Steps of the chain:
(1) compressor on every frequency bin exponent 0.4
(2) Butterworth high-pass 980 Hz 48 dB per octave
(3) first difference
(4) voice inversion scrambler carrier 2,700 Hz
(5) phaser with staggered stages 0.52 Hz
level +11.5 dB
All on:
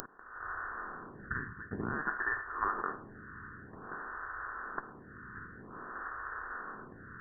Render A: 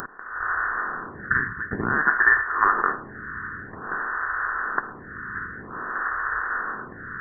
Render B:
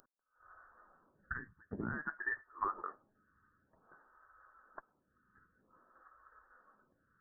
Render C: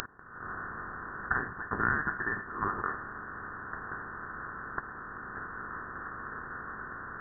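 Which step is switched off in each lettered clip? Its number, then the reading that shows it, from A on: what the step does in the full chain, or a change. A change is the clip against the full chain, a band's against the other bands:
3, 2 kHz band +7.0 dB
1, 250 Hz band +2.5 dB
5, change in momentary loudness spread −4 LU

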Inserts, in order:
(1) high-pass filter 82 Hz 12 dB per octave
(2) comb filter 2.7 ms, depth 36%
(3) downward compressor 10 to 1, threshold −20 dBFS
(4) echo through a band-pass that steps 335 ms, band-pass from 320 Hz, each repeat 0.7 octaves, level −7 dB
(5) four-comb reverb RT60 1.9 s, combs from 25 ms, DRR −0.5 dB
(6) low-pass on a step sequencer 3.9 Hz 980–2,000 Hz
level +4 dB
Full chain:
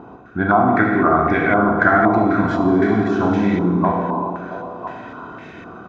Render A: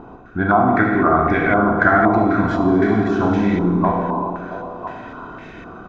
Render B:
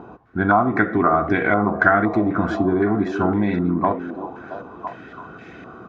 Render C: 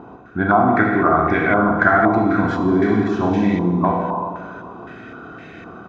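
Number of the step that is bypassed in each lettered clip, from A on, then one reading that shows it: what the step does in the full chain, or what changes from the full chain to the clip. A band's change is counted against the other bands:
1, change in momentary loudness spread +1 LU
5, change in crest factor +3.5 dB
4, change in momentary loudness spread +4 LU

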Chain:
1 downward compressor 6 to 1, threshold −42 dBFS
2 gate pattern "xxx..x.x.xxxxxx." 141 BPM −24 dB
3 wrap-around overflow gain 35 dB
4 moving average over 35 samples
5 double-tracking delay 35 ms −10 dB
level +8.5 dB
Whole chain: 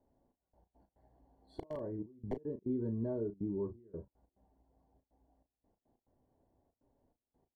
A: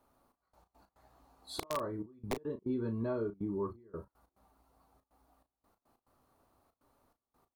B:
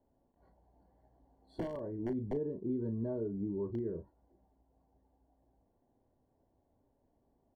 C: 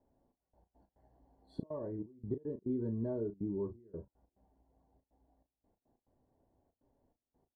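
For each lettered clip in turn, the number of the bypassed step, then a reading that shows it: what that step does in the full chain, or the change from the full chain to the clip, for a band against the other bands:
4, 1 kHz band +11.5 dB
2, change in momentary loudness spread −8 LU
3, distortion level −10 dB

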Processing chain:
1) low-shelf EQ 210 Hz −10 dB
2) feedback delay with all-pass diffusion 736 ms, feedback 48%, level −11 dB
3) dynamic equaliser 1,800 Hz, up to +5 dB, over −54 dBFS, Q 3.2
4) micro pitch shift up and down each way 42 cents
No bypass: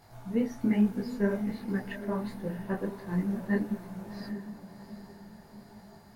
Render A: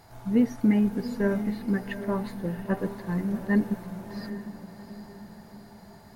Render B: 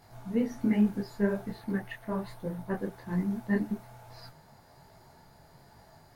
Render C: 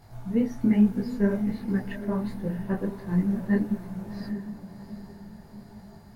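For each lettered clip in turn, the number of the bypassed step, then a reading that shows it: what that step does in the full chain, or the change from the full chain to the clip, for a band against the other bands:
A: 4, change in integrated loudness +4.0 LU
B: 2, change in momentary loudness spread −9 LU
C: 1, 125 Hz band +4.5 dB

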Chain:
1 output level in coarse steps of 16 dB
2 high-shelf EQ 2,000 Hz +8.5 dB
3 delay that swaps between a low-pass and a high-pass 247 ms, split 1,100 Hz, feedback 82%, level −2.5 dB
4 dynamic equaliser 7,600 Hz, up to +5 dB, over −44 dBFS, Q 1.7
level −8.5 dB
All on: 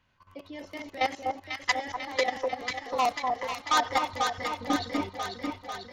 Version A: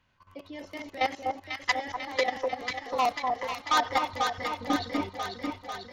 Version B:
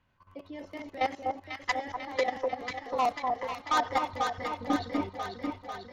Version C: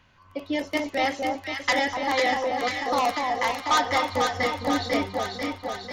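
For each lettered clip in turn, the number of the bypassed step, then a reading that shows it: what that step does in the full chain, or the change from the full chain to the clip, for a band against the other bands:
4, 8 kHz band −3.0 dB
2, 8 kHz band −7.0 dB
1, change in crest factor −3.5 dB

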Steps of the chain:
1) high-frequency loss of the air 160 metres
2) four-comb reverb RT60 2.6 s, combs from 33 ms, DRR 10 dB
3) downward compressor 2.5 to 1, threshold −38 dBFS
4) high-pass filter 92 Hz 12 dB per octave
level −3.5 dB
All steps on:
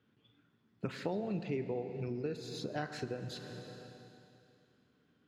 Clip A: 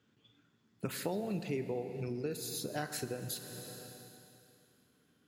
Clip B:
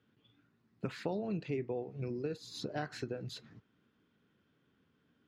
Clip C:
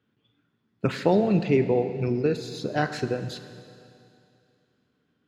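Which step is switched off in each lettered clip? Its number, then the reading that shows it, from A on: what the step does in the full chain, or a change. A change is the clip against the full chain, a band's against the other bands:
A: 1, 8 kHz band +13.5 dB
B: 2, change in momentary loudness spread −8 LU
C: 3, average gain reduction 10.0 dB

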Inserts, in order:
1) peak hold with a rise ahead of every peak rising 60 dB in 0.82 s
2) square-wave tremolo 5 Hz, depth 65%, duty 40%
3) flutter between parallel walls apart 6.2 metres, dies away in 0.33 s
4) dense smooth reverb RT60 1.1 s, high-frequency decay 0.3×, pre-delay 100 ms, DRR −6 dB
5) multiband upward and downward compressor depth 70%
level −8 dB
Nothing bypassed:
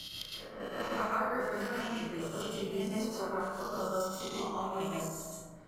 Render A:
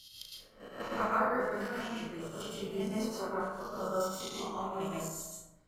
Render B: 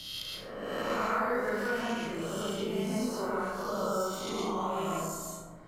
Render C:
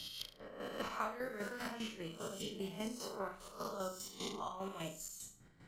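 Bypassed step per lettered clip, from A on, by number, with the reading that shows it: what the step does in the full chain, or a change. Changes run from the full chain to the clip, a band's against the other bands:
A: 5, change in crest factor +2.5 dB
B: 2, change in integrated loudness +3.0 LU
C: 4, 8 kHz band +4.5 dB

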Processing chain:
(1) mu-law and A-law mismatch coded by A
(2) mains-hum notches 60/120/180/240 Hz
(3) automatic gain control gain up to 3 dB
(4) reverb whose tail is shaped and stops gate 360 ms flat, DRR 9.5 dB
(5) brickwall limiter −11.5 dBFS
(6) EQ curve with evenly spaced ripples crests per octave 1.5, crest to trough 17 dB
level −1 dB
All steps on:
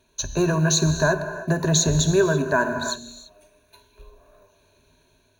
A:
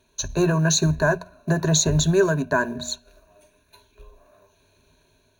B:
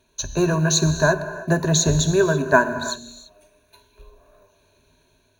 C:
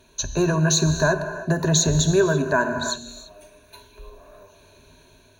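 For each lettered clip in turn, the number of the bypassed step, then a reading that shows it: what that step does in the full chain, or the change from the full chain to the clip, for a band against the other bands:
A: 4, change in momentary loudness spread +1 LU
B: 5, change in crest factor +4.0 dB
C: 1, distortion level −26 dB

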